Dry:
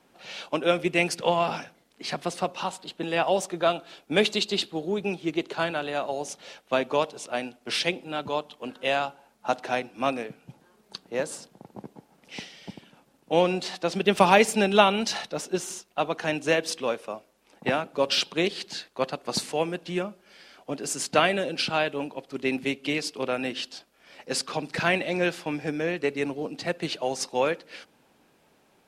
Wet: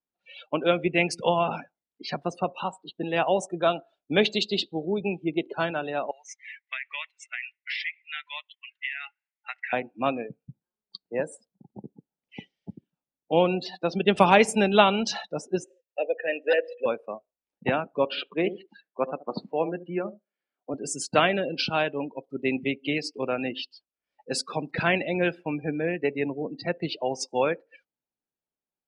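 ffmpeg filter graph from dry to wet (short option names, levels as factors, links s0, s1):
-filter_complex "[0:a]asettb=1/sr,asplit=3[s0][s1][s2];[s0]atrim=end=6.114[s3];[s1]atrim=start=6.11:end=9.73,asetpts=PTS-STARTPTS,afade=t=in:d=0.004:c=qsin,afade=t=out:st=3.616:d=0.004:c=qsin,highpass=f=2000:t=q:w=7.2,acompressor=threshold=0.0501:ratio=16:attack=3.2:release=140:knee=1:detection=peak[s4];[s2]atrim=start=9.726[s5];[s3][s4]acrossfade=d=0.004:c1=hsin:c2=qsin[s6];[s6][s5]acrossfade=d=0.004:c1=qsin:c2=hsin,asettb=1/sr,asplit=3[s7][s8][s9];[s7]atrim=end=15.644[s10];[s8]atrim=start=15.64:end=16.86,asetpts=PTS-STARTPTS,afade=t=in:d=0.004:c=qsin,afade=t=out:st=1.216:d=0.004:c=qsin,asplit=3[s11][s12][s13];[s11]bandpass=f=530:t=q:w=8,volume=1[s14];[s12]bandpass=f=1840:t=q:w=8,volume=0.501[s15];[s13]bandpass=f=2480:t=q:w=8,volume=0.355[s16];[s14][s15][s16]amix=inputs=3:normalize=0,bandreject=f=54.67:t=h:w=4,bandreject=f=109.34:t=h:w=4,aeval=exprs='0.15*sin(PI/2*2*val(0)/0.15)':c=same[s17];[s9]atrim=start=16.856[s18];[s10][s17]acrossfade=d=0.004:c1=hsin:c2=qsin[s19];[s19][s18]acrossfade=d=0.004:c1=qsin:c2=hsin,asettb=1/sr,asplit=3[s20][s21][s22];[s20]atrim=end=18.054[s23];[s21]atrim=start=18.05:end=20.74,asetpts=PTS-STARTPTS,afade=t=in:d=0.004:c=qsin,afade=t=out:st=2.686:d=0.004:c=qsin,highpass=190,lowpass=2400,asplit=2[s24][s25];[s25]adelay=76,lowpass=f=820:p=1,volume=0.282,asplit=2[s26][s27];[s27]adelay=76,lowpass=f=820:p=1,volume=0.24,asplit=2[s28][s29];[s29]adelay=76,lowpass=f=820:p=1,volume=0.24[s30];[s24][s26][s28][s30]amix=inputs=4:normalize=0,atrim=end_sample=118629[s31];[s22]atrim=start=20.736[s32];[s23][s31]acrossfade=d=0.004:c1=hsin:c2=qsin[s33];[s33][s32]acrossfade=d=0.004:c1=qsin:c2=hsin,afftdn=nr=36:nf=-34,lowshelf=f=75:g=11"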